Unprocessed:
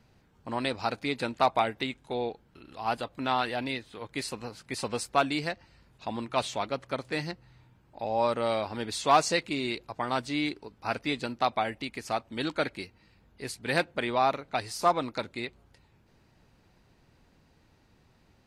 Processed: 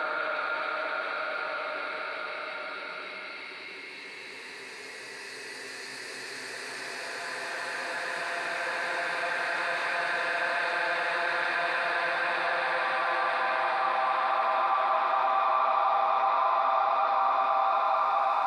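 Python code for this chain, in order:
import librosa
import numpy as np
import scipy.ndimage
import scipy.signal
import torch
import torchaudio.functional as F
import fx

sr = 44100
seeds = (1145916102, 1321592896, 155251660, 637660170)

p1 = fx.tilt_eq(x, sr, slope=-4.0)
p2 = fx.level_steps(p1, sr, step_db=22)
p3 = p1 + (p2 * 10.0 ** (3.0 / 20.0))
p4 = fx.highpass_res(p3, sr, hz=1100.0, q=2.4)
p5 = fx.paulstretch(p4, sr, seeds[0], factor=11.0, window_s=1.0, from_s=12.74)
p6 = p5 + fx.echo_stepped(p5, sr, ms=183, hz=2900.0, octaves=0.7, feedback_pct=70, wet_db=-1, dry=0)
p7 = fx.env_flatten(p6, sr, amount_pct=50)
y = p7 * 10.0 ** (-7.5 / 20.0)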